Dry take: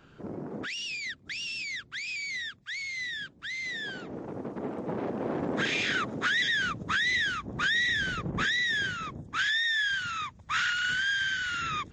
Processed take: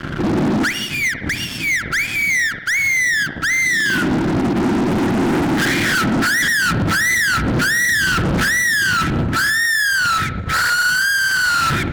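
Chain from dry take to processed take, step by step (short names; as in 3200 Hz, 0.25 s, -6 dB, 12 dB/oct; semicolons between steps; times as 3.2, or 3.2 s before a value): in parallel at +0.5 dB: compressor, threshold -37 dBFS, peak gain reduction 12.5 dB; on the sum: polynomial smoothing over 41 samples; FFT band-reject 380–1300 Hz; fuzz box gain 44 dB, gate -53 dBFS; limiter -15 dBFS, peak gain reduction 4 dB; on a send at -11.5 dB: reverb, pre-delay 47 ms; on the sum: ending taper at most 130 dB/s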